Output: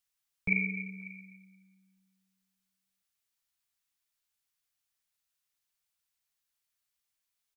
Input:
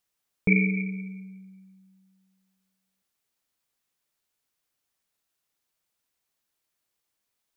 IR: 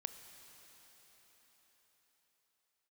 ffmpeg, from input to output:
-filter_complex "[0:a]equalizer=frequency=350:width_type=o:width=2.5:gain=-13,acrossover=split=300|670[link_01][link_02][link_03];[link_02]aeval=exprs='clip(val(0),-1,0.00473)':channel_layout=same[link_04];[link_03]aecho=1:1:544:0.112[link_05];[link_01][link_04][link_05]amix=inputs=3:normalize=0,volume=-3dB"

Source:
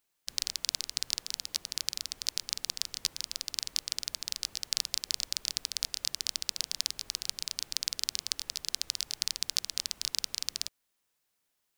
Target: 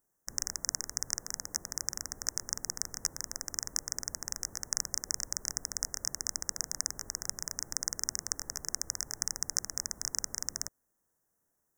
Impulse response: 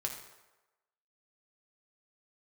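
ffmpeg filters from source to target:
-filter_complex "[0:a]asplit=2[link_01][link_02];[link_02]adynamicsmooth=sensitivity=6.5:basefreq=930,volume=2dB[link_03];[link_01][link_03]amix=inputs=2:normalize=0,asuperstop=centerf=3300:order=12:qfactor=0.89"

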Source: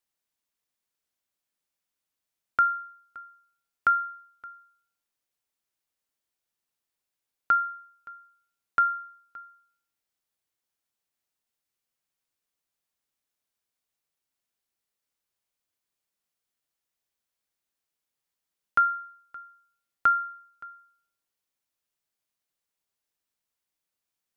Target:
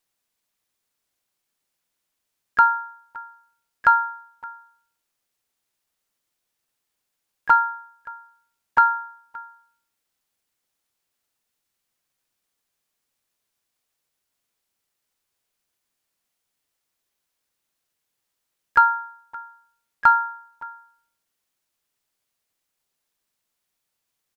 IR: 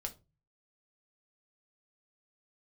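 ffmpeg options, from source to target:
-filter_complex "[0:a]acontrast=35,asplit=3[link_01][link_02][link_03];[link_02]asetrate=29433,aresample=44100,atempo=1.49831,volume=-4dB[link_04];[link_03]asetrate=52444,aresample=44100,atempo=0.840896,volume=-17dB[link_05];[link_01][link_04][link_05]amix=inputs=3:normalize=0"

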